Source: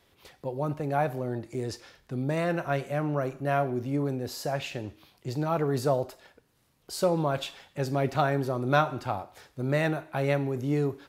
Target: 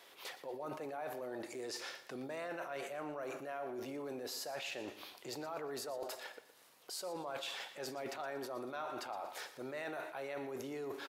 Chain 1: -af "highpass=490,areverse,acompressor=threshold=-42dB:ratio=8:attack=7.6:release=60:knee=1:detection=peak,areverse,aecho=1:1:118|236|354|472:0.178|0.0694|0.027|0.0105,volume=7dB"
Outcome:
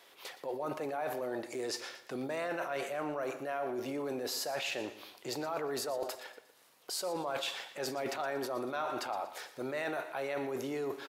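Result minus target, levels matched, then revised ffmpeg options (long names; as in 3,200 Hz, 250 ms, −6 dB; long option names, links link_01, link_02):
downward compressor: peak gain reduction −6.5 dB
-af "highpass=490,areverse,acompressor=threshold=-49.5dB:ratio=8:attack=7.6:release=60:knee=1:detection=peak,areverse,aecho=1:1:118|236|354|472:0.178|0.0694|0.027|0.0105,volume=7dB"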